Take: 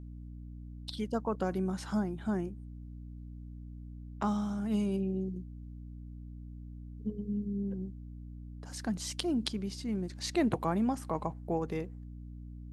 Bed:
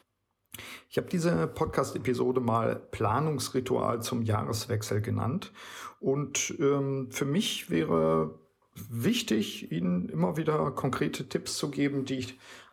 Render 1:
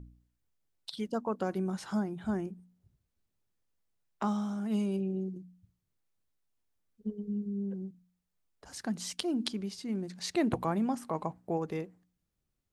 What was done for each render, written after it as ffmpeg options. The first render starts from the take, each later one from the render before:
-af "bandreject=f=60:t=h:w=4,bandreject=f=120:t=h:w=4,bandreject=f=180:t=h:w=4,bandreject=f=240:t=h:w=4,bandreject=f=300:t=h:w=4"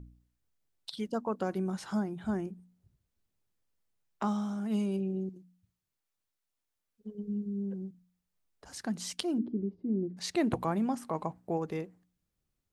-filter_complex "[0:a]asettb=1/sr,asplit=3[a][b][c];[a]atrim=end=5.294[d];[b]atrim=start=5.29:end=7.15,asetpts=PTS-STARTPTS,afade=t=in:d=0.004:c=qsin,afade=t=out:st=1.856:d=0.004:c=qsin,lowshelf=f=420:g=-9.5[e];[c]atrim=start=7.146[f];[d][e]acrossfade=d=0.004:c1=hsin:c2=qsin[g];[g][f]acrossfade=d=0.004:c1=qsin:c2=hsin,asettb=1/sr,asplit=3[h][i][j];[h]atrim=end=9.384[k];[i]atrim=start=9.38:end=10.17,asetpts=PTS-STARTPTS,afade=t=in:d=0.004:c=qsin,afade=t=out:st=0.786:d=0.004:c=qsin,lowpass=f=350:t=q:w=2.1[l];[j]atrim=start=10.166[m];[k][l]acrossfade=d=0.004:c1=hsin:c2=qsin[n];[n][m]acrossfade=d=0.004:c1=qsin:c2=hsin"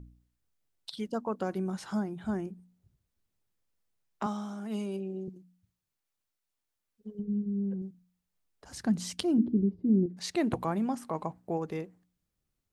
-filter_complex "[0:a]asettb=1/sr,asplit=3[a][b][c];[a]atrim=end=4.264[d];[b]atrim=start=4.26:end=5.28,asetpts=PTS-STARTPTS,afade=t=in:d=0.004:c=qsin,afade=t=out:st=1.016:d=0.004:c=qsin,highpass=240[e];[c]atrim=start=5.276[f];[d][e]acrossfade=d=0.004:c1=hsin:c2=qsin[g];[g][f]acrossfade=d=0.004:c1=qsin:c2=hsin,asettb=1/sr,asplit=3[h][i][j];[h]atrim=end=7.194[k];[i]atrim=start=7.19:end=7.82,asetpts=PTS-STARTPTS,afade=t=in:d=0.004:c=qsin,afade=t=out:st=0.626:d=0.004:c=qsin,bass=f=250:g=5,treble=f=4k:g=-10[l];[j]atrim=start=7.816[m];[k][l]acrossfade=d=0.004:c1=hsin:c2=qsin[n];[n][m]acrossfade=d=0.004:c1=qsin:c2=hsin,asettb=1/sr,asplit=3[o][p][q];[o]atrim=end=8.714[r];[p]atrim=start=8.71:end=10.06,asetpts=PTS-STARTPTS,afade=t=in:d=0.004:c=qsin,afade=t=out:st=1.346:d=0.004:c=qsin,equalizer=f=77:w=0.37:g=13[s];[q]atrim=start=10.056[t];[r][s]acrossfade=d=0.004:c1=hsin:c2=qsin[u];[u][t]acrossfade=d=0.004:c1=qsin:c2=hsin"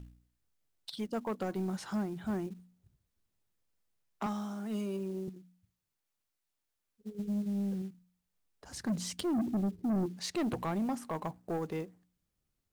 -af "acrusher=bits=6:mode=log:mix=0:aa=0.000001,asoftclip=type=tanh:threshold=-27.5dB"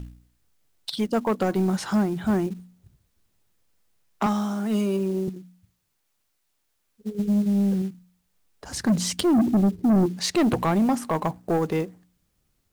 -af "volume=12dB"

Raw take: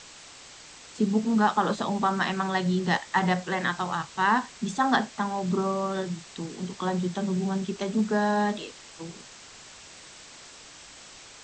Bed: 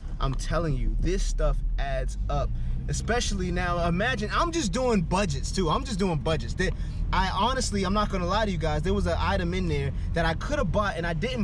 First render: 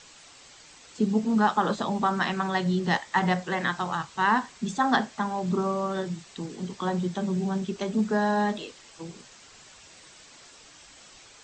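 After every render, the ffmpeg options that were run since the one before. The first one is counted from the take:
-af "afftdn=nr=6:nf=-48"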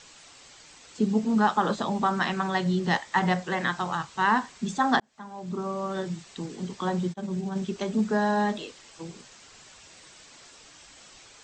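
-filter_complex "[0:a]asplit=3[a][b][c];[a]afade=t=out:st=7.12:d=0.02[d];[b]agate=range=-33dB:threshold=-24dB:ratio=3:release=100:detection=peak,afade=t=in:st=7.12:d=0.02,afade=t=out:st=7.55:d=0.02[e];[c]afade=t=in:st=7.55:d=0.02[f];[d][e][f]amix=inputs=3:normalize=0,asplit=2[g][h];[g]atrim=end=5,asetpts=PTS-STARTPTS,afade=t=out:st=4.996:d=0.004:c=hsin[i];[h]atrim=start=5,asetpts=PTS-STARTPTS,afade=t=in:d=1.12[j];[i][j]concat=n=2:v=0:a=1"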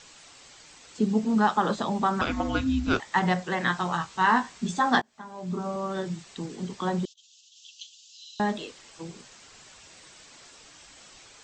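-filter_complex "[0:a]asettb=1/sr,asplit=3[a][b][c];[a]atrim=end=2.214[d];[b]atrim=start=2.21:end=3,asetpts=PTS-STARTPTS,afade=t=in:d=0.004:c=qsin,afade=t=out:st=0.786:d=0.004:c=qsin,afreqshift=-440[e];[c]atrim=start=2.996[f];[d][e]acrossfade=d=0.004:c1=hsin:c2=qsin[g];[g][f]acrossfade=d=0.004:c1=qsin:c2=hsin,asettb=1/sr,asplit=3[h][i][j];[h]atrim=end=3.644[k];[i]atrim=start=3.64:end=5.76,asetpts=PTS-STARTPTS,afade=t=in:d=0.004:c=qsin,afade=t=out:st=2.116:d=0.004:c=qsin,asplit=2[l][m];[m]adelay=17,volume=-5.5dB[n];[l][n]amix=inputs=2:normalize=0,atrim=end_sample=93492[o];[j]atrim=start=5.756[p];[k][o]acrossfade=d=0.004:c1=hsin:c2=qsin[q];[q][p]acrossfade=d=0.004:c1=qsin:c2=hsin,asettb=1/sr,asplit=3[r][s][t];[r]atrim=end=7.054[u];[s]atrim=start=7.05:end=8.4,asetpts=PTS-STARTPTS,afade=t=in:d=0.004:c=qsin,afade=t=out:st=1.346:d=0.004:c=qsin,asuperpass=centerf=4600:order=20:qfactor=0.98[v];[t]atrim=start=8.396[w];[u][v]acrossfade=d=0.004:c1=hsin:c2=qsin[x];[x][w]acrossfade=d=0.004:c1=qsin:c2=hsin"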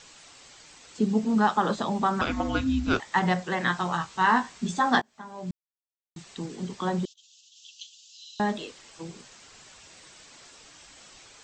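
-filter_complex "[0:a]asplit=3[a][b][c];[a]atrim=end=5.51,asetpts=PTS-STARTPTS,afade=t=out:st=5.506:d=0.004:c=hsin[d];[b]atrim=start=5.51:end=6.16,asetpts=PTS-STARTPTS,volume=0[e];[c]atrim=start=6.16,asetpts=PTS-STARTPTS,afade=t=in:d=0.004:c=hsin[f];[d][e][f]concat=n=3:v=0:a=1"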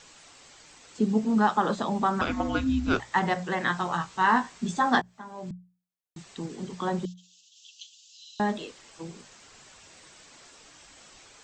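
-af "equalizer=f=4.2k:t=o:w=1.9:g=-2.5,bandreject=f=60:t=h:w=6,bandreject=f=120:t=h:w=6,bandreject=f=180:t=h:w=6"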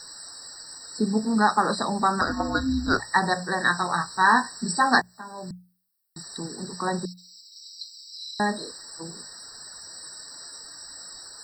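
-af "crystalizer=i=7:c=0,afftfilt=real='re*eq(mod(floor(b*sr/1024/1900),2),0)':imag='im*eq(mod(floor(b*sr/1024/1900),2),0)':win_size=1024:overlap=0.75"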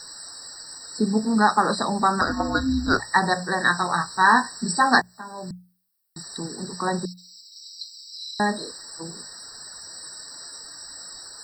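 -af "volume=2dB"

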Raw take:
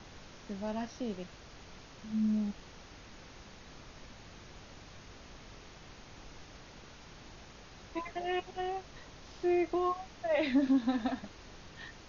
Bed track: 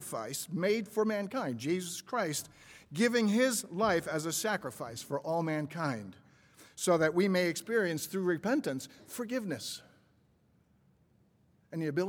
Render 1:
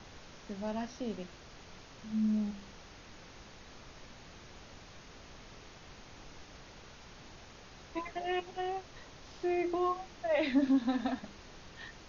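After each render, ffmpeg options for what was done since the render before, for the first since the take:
-af "bandreject=f=50:t=h:w=4,bandreject=f=100:t=h:w=4,bandreject=f=150:t=h:w=4,bandreject=f=200:t=h:w=4,bandreject=f=250:t=h:w=4,bandreject=f=300:t=h:w=4,bandreject=f=350:t=h:w=4"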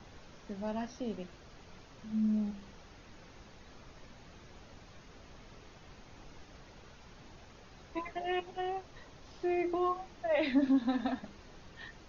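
-af "afftdn=nr=6:nf=-54"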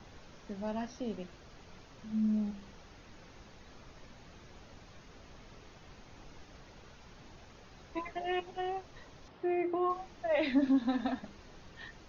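-filter_complex "[0:a]asettb=1/sr,asplit=3[a][b][c];[a]atrim=end=9.284[d];[b]atrim=start=9.28:end=9.9,asetpts=PTS-STARTPTS,afade=t=in:d=0.004:c=qsin,afade=t=out:st=0.616:d=0.004:c=qsin,highpass=100,lowpass=2.5k[e];[c]atrim=start=9.896[f];[d][e]acrossfade=d=0.004:c1=hsin:c2=qsin[g];[g][f]acrossfade=d=0.004:c1=qsin:c2=hsin"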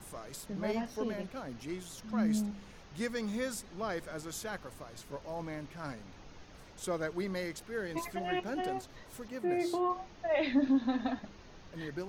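-filter_complex "[1:a]volume=-8dB[a];[0:a][a]amix=inputs=2:normalize=0"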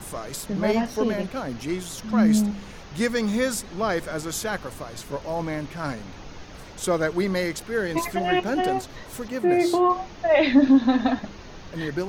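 -af "volume=12dB"

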